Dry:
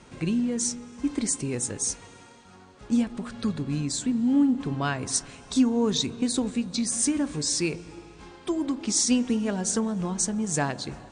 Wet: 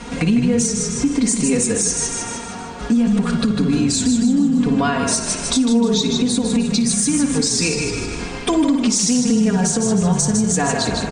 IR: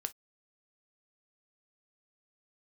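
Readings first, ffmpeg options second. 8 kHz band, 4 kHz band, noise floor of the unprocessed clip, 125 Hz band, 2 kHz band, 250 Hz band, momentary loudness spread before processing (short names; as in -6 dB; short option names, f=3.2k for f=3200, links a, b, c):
+8.5 dB, +9.5 dB, -51 dBFS, +11.0 dB, +10.0 dB, +9.0 dB, 8 LU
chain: -filter_complex "[0:a]aecho=1:1:4.2:0.94,asplit=2[a][b];[b]highshelf=f=6.3k:g=-11[c];[1:a]atrim=start_sample=2205,adelay=56[d];[c][d]afir=irnorm=-1:irlink=0,volume=-6.5dB[e];[a][e]amix=inputs=2:normalize=0,acompressor=threshold=-22dB:ratio=6,asplit=6[f][g][h][i][j][k];[g]adelay=154,afreqshift=-31,volume=-6dB[l];[h]adelay=308,afreqshift=-62,volume=-13.1dB[m];[i]adelay=462,afreqshift=-93,volume=-20.3dB[n];[j]adelay=616,afreqshift=-124,volume=-27.4dB[o];[k]adelay=770,afreqshift=-155,volume=-34.5dB[p];[f][l][m][n][o][p]amix=inputs=6:normalize=0,acontrast=88,alimiter=limit=-16.5dB:level=0:latency=1:release=463,volume=8dB"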